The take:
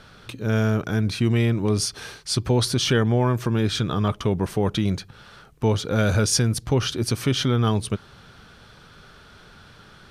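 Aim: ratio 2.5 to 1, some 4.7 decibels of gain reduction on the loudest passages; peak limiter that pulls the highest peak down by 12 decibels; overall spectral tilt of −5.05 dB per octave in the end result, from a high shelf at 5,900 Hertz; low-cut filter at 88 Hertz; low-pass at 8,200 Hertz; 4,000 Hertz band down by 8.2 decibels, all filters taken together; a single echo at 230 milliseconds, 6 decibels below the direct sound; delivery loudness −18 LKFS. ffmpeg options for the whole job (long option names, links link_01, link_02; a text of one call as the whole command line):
ffmpeg -i in.wav -af "highpass=88,lowpass=8200,equalizer=frequency=4000:width_type=o:gain=-8,highshelf=frequency=5900:gain=-7,acompressor=threshold=-23dB:ratio=2.5,alimiter=limit=-24dB:level=0:latency=1,aecho=1:1:230:0.501,volume=15.5dB" out.wav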